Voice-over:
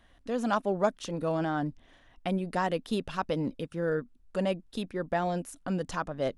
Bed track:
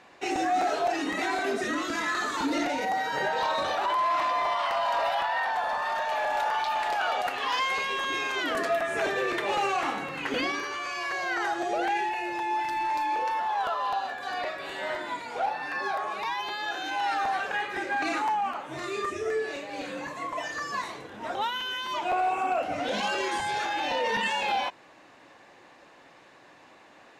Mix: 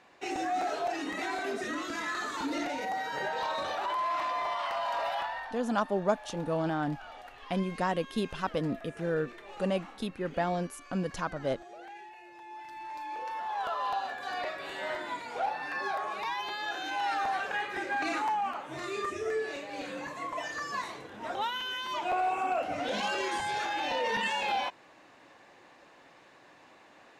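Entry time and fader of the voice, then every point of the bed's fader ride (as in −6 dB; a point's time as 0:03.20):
5.25 s, −1.0 dB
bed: 0:05.23 −5.5 dB
0:05.66 −19.5 dB
0:12.32 −19.5 dB
0:13.81 −3 dB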